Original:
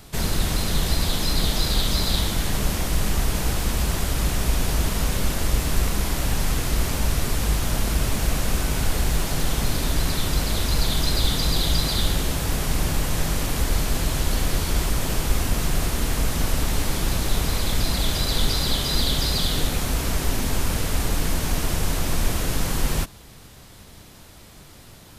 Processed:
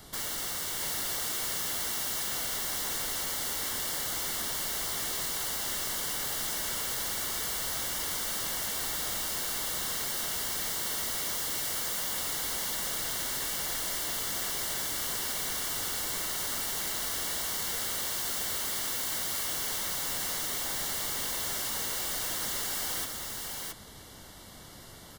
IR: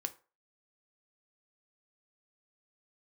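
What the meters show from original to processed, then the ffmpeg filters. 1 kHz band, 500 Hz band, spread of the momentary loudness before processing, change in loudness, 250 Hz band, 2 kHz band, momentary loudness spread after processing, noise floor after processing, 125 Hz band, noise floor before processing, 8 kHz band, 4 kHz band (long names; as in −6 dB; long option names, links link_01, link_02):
−8.0 dB, −12.0 dB, 3 LU, −6.0 dB, −18.0 dB, −6.0 dB, 2 LU, −48 dBFS, −24.5 dB, −46 dBFS, −2.0 dB, −7.5 dB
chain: -filter_complex "[0:a]lowshelf=frequency=160:gain=-7,acrossover=split=440|3000[link_01][link_02][link_03];[link_01]acompressor=threshold=-35dB:ratio=6[link_04];[link_04][link_02][link_03]amix=inputs=3:normalize=0,aeval=exprs='(mod(22.4*val(0)+1,2)-1)/22.4':channel_layout=same,asuperstop=centerf=2500:order=12:qfactor=6.8,aecho=1:1:670:0.668,volume=-2.5dB"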